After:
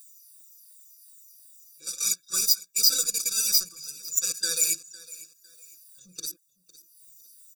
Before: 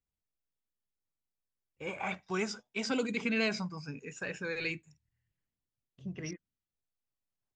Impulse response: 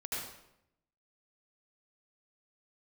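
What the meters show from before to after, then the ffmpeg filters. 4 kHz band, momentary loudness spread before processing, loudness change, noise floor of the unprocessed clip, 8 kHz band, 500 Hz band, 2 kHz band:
+16.5 dB, 13 LU, +12.0 dB, under -85 dBFS, +27.0 dB, -11.0 dB, -6.0 dB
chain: -filter_complex "[0:a]afftfilt=real='re*pow(10,11/40*sin(2*PI*(0.81*log(max(b,1)*sr/1024/100)/log(2)-(-2.7)*(pts-256)/sr)))':imag='im*pow(10,11/40*sin(2*PI*(0.81*log(max(b,1)*sr/1024/100)/log(2)-(-2.7)*(pts-256)/sr)))':win_size=1024:overlap=0.75,highpass=f=960:p=1,acompressor=mode=upward:threshold=0.00158:ratio=2.5,alimiter=level_in=1.88:limit=0.0631:level=0:latency=1:release=14,volume=0.531,acontrast=62,aeval=exprs='0.0708*(cos(1*acos(clip(val(0)/0.0708,-1,1)))-cos(1*PI/2))+0.02*(cos(3*acos(clip(val(0)/0.0708,-1,1)))-cos(3*PI/2))+0.00501*(cos(7*acos(clip(val(0)/0.0708,-1,1)))-cos(7*PI/2))':c=same,aecho=1:1:6:0.95,asoftclip=type=tanh:threshold=0.0596,aexciter=amount=9.1:drive=9.8:freq=4300,asplit=2[s0][s1];[s1]aecho=0:1:506|1012|1518:0.112|0.0359|0.0115[s2];[s0][s2]amix=inputs=2:normalize=0,afftfilt=real='re*eq(mod(floor(b*sr/1024/560),2),0)':imag='im*eq(mod(floor(b*sr/1024/560),2),0)':win_size=1024:overlap=0.75,volume=0.631"

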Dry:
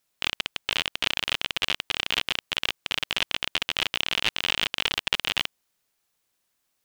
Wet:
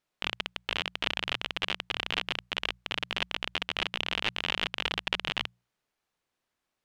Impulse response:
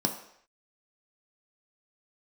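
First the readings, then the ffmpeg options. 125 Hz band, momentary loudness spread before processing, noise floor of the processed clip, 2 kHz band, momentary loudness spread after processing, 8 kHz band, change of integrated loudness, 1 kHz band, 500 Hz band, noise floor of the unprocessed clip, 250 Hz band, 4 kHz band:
-2.0 dB, 4 LU, -85 dBFS, -4.5 dB, 4 LU, -11.5 dB, -5.5 dB, -2.0 dB, -1.5 dB, -76 dBFS, -1.0 dB, -6.0 dB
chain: -af "aemphasis=mode=reproduction:type=75kf,bandreject=f=60:t=h:w=6,bandreject=f=120:t=h:w=6,bandreject=f=180:t=h:w=6,volume=0.891"

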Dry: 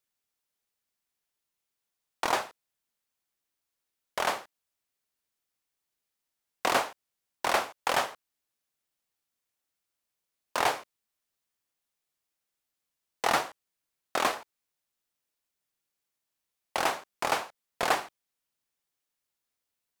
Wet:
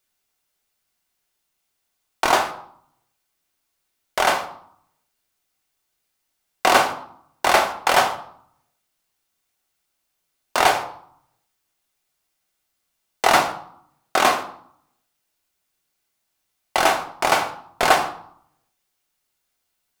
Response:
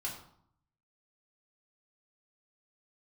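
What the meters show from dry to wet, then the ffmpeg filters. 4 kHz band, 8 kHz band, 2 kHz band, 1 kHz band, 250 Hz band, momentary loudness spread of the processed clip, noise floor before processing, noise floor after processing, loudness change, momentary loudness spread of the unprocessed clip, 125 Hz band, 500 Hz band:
+10.0 dB, +9.5 dB, +10.5 dB, +11.0 dB, +10.0 dB, 14 LU, under -85 dBFS, -76 dBFS, +10.0 dB, 11 LU, +10.5 dB, +10.5 dB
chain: -filter_complex "[0:a]asplit=2[s0][s1];[1:a]atrim=start_sample=2205[s2];[s1][s2]afir=irnorm=-1:irlink=0,volume=0.891[s3];[s0][s3]amix=inputs=2:normalize=0,volume=1.88"

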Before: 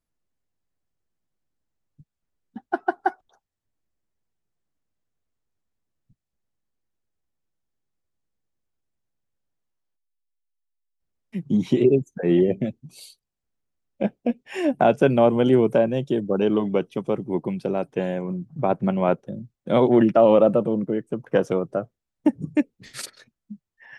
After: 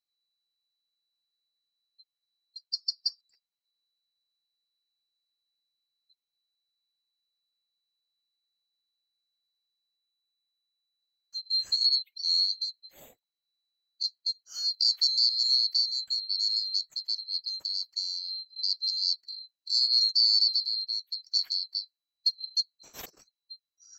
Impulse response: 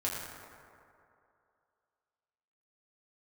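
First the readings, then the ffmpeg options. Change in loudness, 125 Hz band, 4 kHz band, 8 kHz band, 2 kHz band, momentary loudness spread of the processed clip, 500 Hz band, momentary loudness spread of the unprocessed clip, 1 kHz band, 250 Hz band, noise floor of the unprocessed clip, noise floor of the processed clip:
-4.0 dB, under -40 dB, +20.0 dB, no reading, under -25 dB, 14 LU, under -40 dB, 14 LU, under -35 dB, under -40 dB, -84 dBFS, under -85 dBFS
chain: -af "afftfilt=real='real(if(lt(b,736),b+184*(1-2*mod(floor(b/184),2)),b),0)':imag='imag(if(lt(b,736),b+184*(1-2*mod(floor(b/184),2)),b),0)':win_size=2048:overlap=0.75,volume=0.398"

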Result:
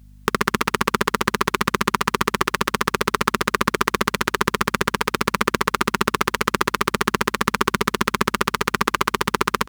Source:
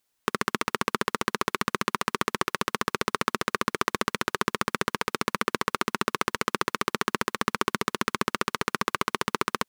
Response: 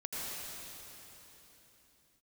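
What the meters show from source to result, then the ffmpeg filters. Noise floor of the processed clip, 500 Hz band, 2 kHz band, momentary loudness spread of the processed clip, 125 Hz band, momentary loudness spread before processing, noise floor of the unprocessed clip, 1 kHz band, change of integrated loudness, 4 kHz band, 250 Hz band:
-46 dBFS, +7.0 dB, +7.0 dB, 1 LU, +9.0 dB, 1 LU, -77 dBFS, +7.0 dB, +7.0 dB, +6.5 dB, +7.5 dB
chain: -filter_complex "[0:a]asplit=2[s0][s1];[s1]adelay=128.3,volume=0.224,highshelf=f=4000:g=-2.89[s2];[s0][s2]amix=inputs=2:normalize=0,apsyclip=3.35,aeval=exprs='val(0)+0.00708*(sin(2*PI*50*n/s)+sin(2*PI*2*50*n/s)/2+sin(2*PI*3*50*n/s)/3+sin(2*PI*4*50*n/s)/4+sin(2*PI*5*50*n/s)/5)':c=same,volume=0.841"

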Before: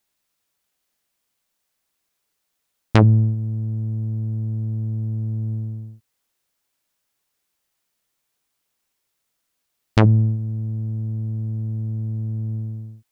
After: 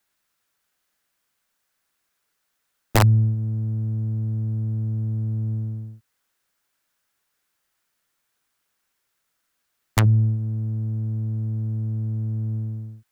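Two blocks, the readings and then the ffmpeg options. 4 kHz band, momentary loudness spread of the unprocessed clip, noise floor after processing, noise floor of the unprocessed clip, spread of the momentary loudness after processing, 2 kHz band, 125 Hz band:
+1.5 dB, 13 LU, -76 dBFS, -76 dBFS, 10 LU, 0.0 dB, -1.5 dB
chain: -filter_complex "[0:a]acrossover=split=140|3000[s0][s1][s2];[s1]acompressor=threshold=0.0282:ratio=2.5[s3];[s0][s3][s2]amix=inputs=3:normalize=0,equalizer=f=1500:w=1.7:g=7,aeval=exprs='(mod(2.99*val(0)+1,2)-1)/2.99':c=same"

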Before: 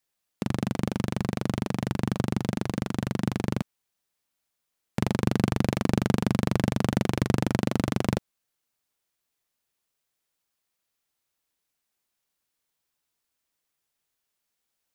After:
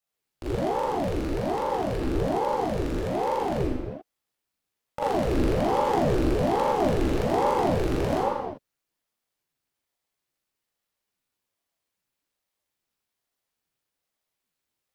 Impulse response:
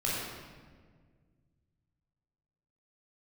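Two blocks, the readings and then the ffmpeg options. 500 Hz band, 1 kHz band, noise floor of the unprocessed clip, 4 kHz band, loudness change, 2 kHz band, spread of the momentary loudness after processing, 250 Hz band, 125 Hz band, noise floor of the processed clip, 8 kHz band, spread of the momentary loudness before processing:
+8.5 dB, +10.0 dB, -82 dBFS, -1.5 dB, +2.0 dB, -1.0 dB, 9 LU, -1.5 dB, -4.0 dB, -84 dBFS, -3.5 dB, 6 LU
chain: -filter_complex "[1:a]atrim=start_sample=2205,afade=t=out:st=0.45:d=0.01,atrim=end_sample=20286[s0];[0:a][s0]afir=irnorm=-1:irlink=0,aeval=exprs='val(0)*sin(2*PI*420*n/s+420*0.7/1.2*sin(2*PI*1.2*n/s))':c=same,volume=0.531"

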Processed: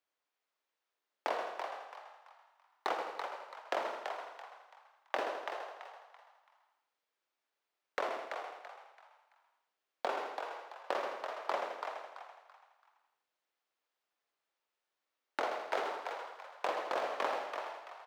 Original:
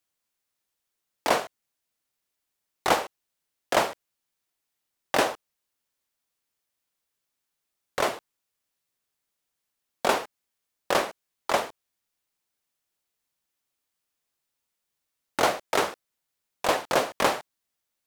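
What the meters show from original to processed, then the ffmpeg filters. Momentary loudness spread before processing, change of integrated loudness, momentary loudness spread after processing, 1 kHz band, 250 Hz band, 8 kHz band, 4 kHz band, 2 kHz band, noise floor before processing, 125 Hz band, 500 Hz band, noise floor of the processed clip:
13 LU, -12.5 dB, 16 LU, -9.0 dB, -16.0 dB, -22.0 dB, -14.5 dB, -10.5 dB, -83 dBFS, under -25 dB, -10.0 dB, under -85 dBFS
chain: -filter_complex "[0:a]equalizer=f=7200:w=0.33:g=-9,asplit=2[s0][s1];[s1]aecho=0:1:82|164|246|328:0.501|0.16|0.0513|0.0164[s2];[s0][s2]amix=inputs=2:normalize=0,acompressor=threshold=0.0224:ratio=6,acrossover=split=330 6300:gain=0.0631 1 0.2[s3][s4][s5];[s3][s4][s5]amix=inputs=3:normalize=0,asplit=2[s6][s7];[s7]asplit=4[s8][s9][s10][s11];[s8]adelay=334,afreqshift=70,volume=0.501[s12];[s9]adelay=668,afreqshift=140,volume=0.16[s13];[s10]adelay=1002,afreqshift=210,volume=0.0513[s14];[s11]adelay=1336,afreqshift=280,volume=0.0164[s15];[s12][s13][s14][s15]amix=inputs=4:normalize=0[s16];[s6][s16]amix=inputs=2:normalize=0,volume=1.12"

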